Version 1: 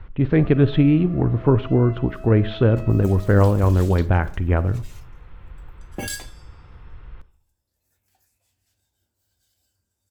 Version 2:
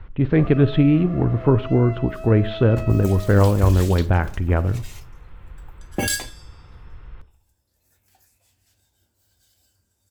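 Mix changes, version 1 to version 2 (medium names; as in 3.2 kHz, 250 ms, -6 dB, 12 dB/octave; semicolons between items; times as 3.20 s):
first sound +6.0 dB; second sound +7.0 dB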